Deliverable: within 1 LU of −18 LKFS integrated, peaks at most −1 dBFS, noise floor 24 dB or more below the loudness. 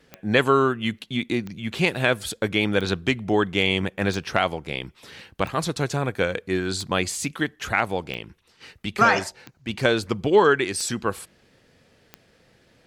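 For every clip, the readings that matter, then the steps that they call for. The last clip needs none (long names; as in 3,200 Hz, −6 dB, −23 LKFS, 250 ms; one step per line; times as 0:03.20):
number of clicks 10; integrated loudness −23.5 LKFS; sample peak −4.0 dBFS; target loudness −18.0 LKFS
→ click removal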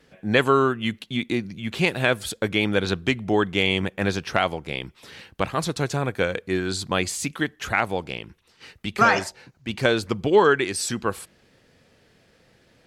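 number of clicks 0; integrated loudness −23.5 LKFS; sample peak −4.0 dBFS; target loudness −18.0 LKFS
→ level +5.5 dB
brickwall limiter −1 dBFS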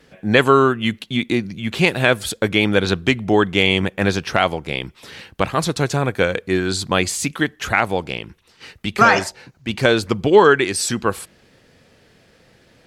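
integrated loudness −18.0 LKFS; sample peak −1.0 dBFS; background noise floor −55 dBFS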